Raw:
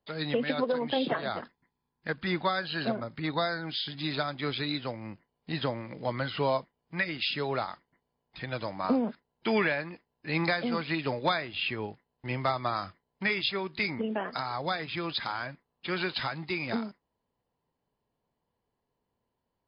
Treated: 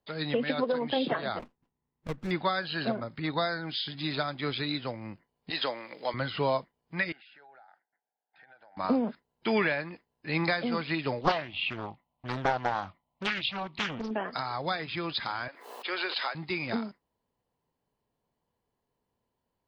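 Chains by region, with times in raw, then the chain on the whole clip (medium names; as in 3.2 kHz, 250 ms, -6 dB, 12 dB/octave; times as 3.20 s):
1.39–2.31 s: distance through air 460 m + sliding maximum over 17 samples
5.50–6.14 s: high-pass 410 Hz + treble shelf 2.5 kHz +9 dB
7.12–8.77 s: two resonant band-passes 1.1 kHz, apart 0.94 oct + compression 10:1, threshold -52 dBFS
11.21–14.11 s: peaking EQ 480 Hz +7 dB 1.8 oct + static phaser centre 1.6 kHz, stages 6 + loudspeaker Doppler distortion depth 0.94 ms
15.48–16.35 s: high-pass 400 Hz 24 dB/octave + swell ahead of each attack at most 64 dB/s
whole clip: none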